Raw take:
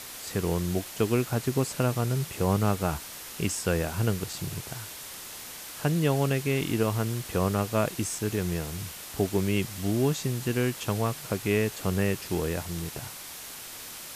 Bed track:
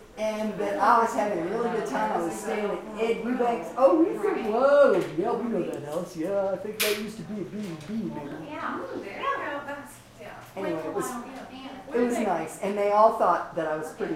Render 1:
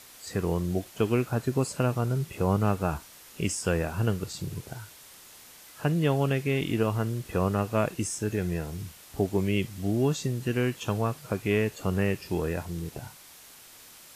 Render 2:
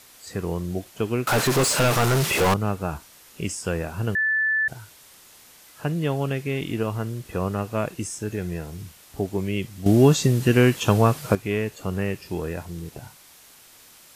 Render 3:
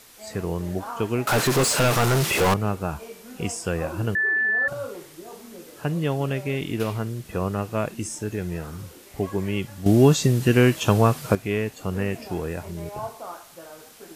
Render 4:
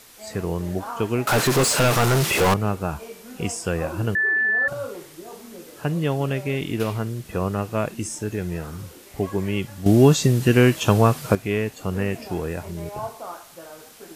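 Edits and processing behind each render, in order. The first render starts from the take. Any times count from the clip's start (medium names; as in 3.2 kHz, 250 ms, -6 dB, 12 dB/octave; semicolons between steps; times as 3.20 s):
noise print and reduce 9 dB
1.27–2.54 s: overdrive pedal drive 34 dB, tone 7 kHz, clips at -12.5 dBFS; 4.15–4.68 s: bleep 1.75 kHz -19 dBFS; 9.86–11.35 s: gain +10 dB
add bed track -15 dB
trim +1.5 dB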